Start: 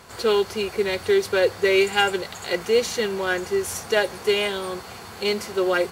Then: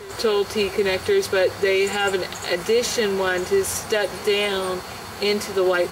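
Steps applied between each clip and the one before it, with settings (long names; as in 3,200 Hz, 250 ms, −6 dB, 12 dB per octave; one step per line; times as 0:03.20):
brickwall limiter −15.5 dBFS, peak gain reduction 11 dB
backwards echo 1,082 ms −20.5 dB
level +4.5 dB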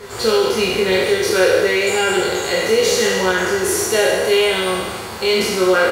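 peak hold with a decay on every bin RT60 1.70 s
double-tracking delay 27 ms −3 dB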